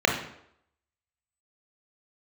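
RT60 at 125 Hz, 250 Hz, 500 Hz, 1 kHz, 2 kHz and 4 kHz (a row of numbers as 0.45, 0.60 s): 0.60, 0.65, 0.75, 0.70, 0.65, 0.55 s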